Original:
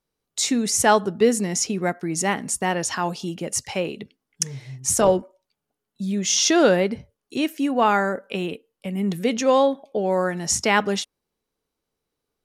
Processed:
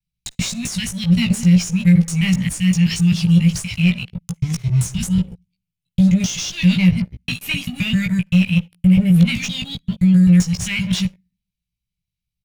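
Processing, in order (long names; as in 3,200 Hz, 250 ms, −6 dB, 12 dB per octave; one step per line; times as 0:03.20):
reversed piece by piece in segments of 130 ms
Chebyshev band-stop filter 180–2,300 Hz, order 4
high-shelf EQ 8,100 Hz +8 dB
on a send at −21 dB: convolution reverb RT60 0.55 s, pre-delay 42 ms
on the sum: downward compressor 16 to 1, threshold −28 dBFS, peak gain reduction 14.5 dB
leveller curve on the samples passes 3
in parallel at −6 dB: asymmetric clip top −27.5 dBFS, bottom −19 dBFS
on the sum: bass and treble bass +7 dB, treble −11 dB
double-tracking delay 17 ms −4 dB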